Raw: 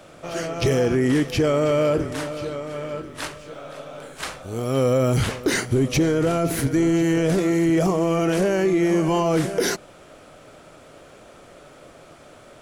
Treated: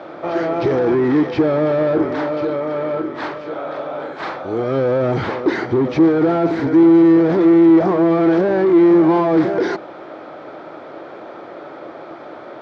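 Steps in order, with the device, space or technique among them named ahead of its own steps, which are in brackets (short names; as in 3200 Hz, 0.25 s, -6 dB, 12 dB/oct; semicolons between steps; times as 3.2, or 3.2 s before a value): overdrive pedal into a guitar cabinet (overdrive pedal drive 22 dB, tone 1100 Hz, clips at -12 dBFS; speaker cabinet 92–4500 Hz, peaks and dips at 330 Hz +9 dB, 850 Hz +5 dB, 2800 Hz -8 dB)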